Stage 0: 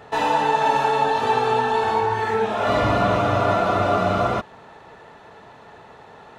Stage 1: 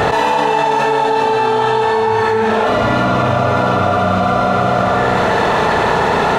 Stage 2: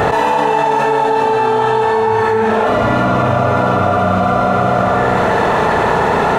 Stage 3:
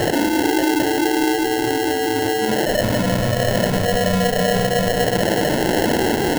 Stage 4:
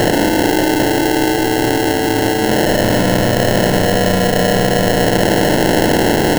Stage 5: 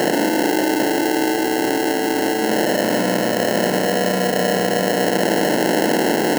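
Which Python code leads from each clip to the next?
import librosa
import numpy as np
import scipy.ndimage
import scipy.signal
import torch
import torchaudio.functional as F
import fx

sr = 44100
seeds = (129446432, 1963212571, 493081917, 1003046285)

y1 = fx.rev_schroeder(x, sr, rt60_s=1.8, comb_ms=32, drr_db=-1.0)
y1 = fx.env_flatten(y1, sr, amount_pct=100)
y1 = y1 * 10.0 ** (-1.0 / 20.0)
y2 = fx.peak_eq(y1, sr, hz=4200.0, db=-6.0, octaves=1.5)
y2 = y2 * 10.0 ** (1.0 / 20.0)
y3 = fx.spec_expand(y2, sr, power=1.7)
y3 = fx.room_flutter(y3, sr, wall_m=6.4, rt60_s=0.21)
y3 = fx.sample_hold(y3, sr, seeds[0], rate_hz=1200.0, jitter_pct=0)
y3 = y3 * 10.0 ** (-5.0 / 20.0)
y4 = fx.bin_compress(y3, sr, power=0.4)
y5 = scipy.signal.sosfilt(scipy.signal.butter(4, 180.0, 'highpass', fs=sr, output='sos'), y4)
y5 = fx.notch(y5, sr, hz=3500.0, q=5.7)
y5 = y5 * 10.0 ** (-4.0 / 20.0)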